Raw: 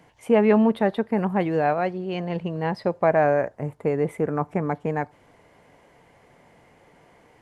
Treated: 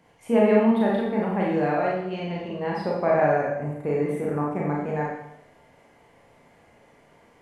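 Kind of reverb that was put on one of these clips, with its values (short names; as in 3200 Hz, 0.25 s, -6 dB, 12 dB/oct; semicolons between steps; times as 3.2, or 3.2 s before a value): Schroeder reverb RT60 0.8 s, combs from 27 ms, DRR -4 dB; gain -6 dB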